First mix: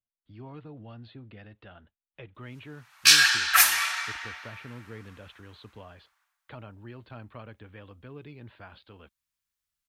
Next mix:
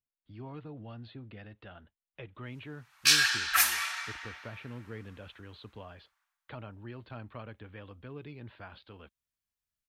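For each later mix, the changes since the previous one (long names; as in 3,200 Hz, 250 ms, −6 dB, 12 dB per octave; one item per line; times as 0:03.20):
background −6.0 dB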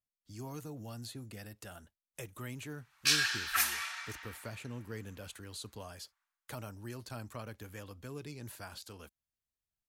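speech: remove Butterworth low-pass 3,700 Hz 48 dB per octave
background −5.5 dB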